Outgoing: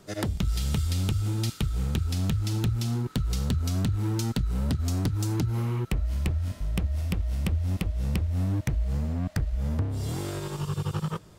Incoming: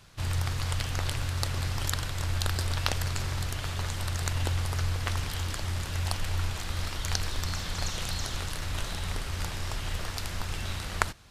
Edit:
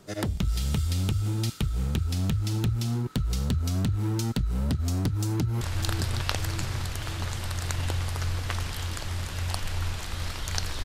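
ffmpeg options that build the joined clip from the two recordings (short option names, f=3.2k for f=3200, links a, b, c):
-filter_complex "[0:a]apad=whole_dur=10.84,atrim=end=10.84,atrim=end=5.612[a];[1:a]atrim=start=2.178:end=7.41[b];[a][b]acrossfade=d=0.004:c1=hsin:c2=hsin,asplit=2[c][d];[d]afade=t=in:st=5.11:d=0.01,afade=t=out:st=5.61:d=0.01,aecho=0:1:600|1200|1800|2400|3000|3600|4200|4800|5400:0.421697|0.274103|0.178167|0.115808|0.0752755|0.048929|0.0318039|0.0206725|0.0134371[e];[c][e]amix=inputs=2:normalize=0"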